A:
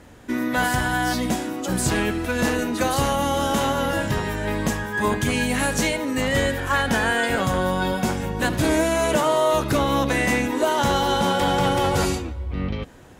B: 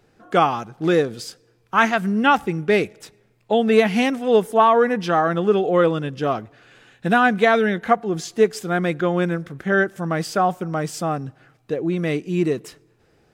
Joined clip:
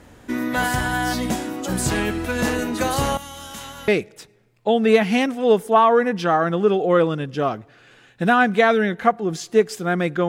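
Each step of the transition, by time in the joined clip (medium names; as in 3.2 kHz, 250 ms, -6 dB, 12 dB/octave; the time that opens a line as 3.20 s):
A
3.17–3.88 s: amplifier tone stack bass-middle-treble 5-5-5
3.88 s: go over to B from 2.72 s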